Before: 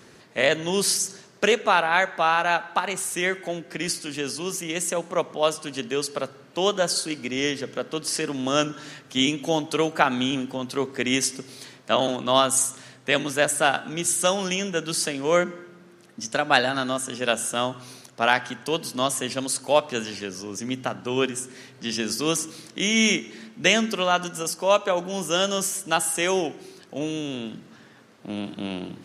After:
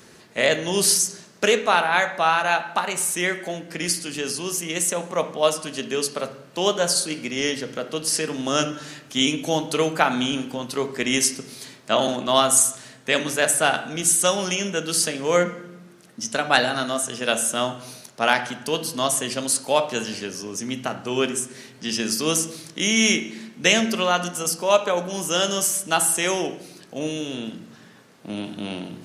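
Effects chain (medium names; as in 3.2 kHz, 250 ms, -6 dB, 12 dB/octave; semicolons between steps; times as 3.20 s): treble shelf 6.4 kHz +8 dB; on a send: reverberation RT60 0.75 s, pre-delay 5 ms, DRR 8 dB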